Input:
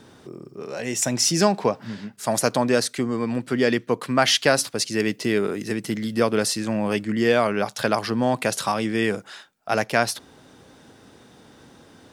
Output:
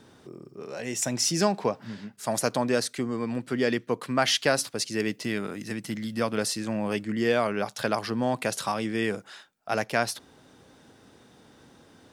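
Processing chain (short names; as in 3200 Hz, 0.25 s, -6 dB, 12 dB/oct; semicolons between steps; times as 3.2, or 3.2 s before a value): 5.21–6.38 bell 400 Hz -9 dB 0.42 oct; gain -5 dB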